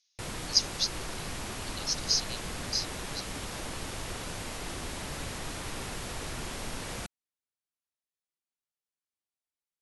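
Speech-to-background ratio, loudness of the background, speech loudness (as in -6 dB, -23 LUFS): 8.0 dB, -37.5 LUFS, -29.5 LUFS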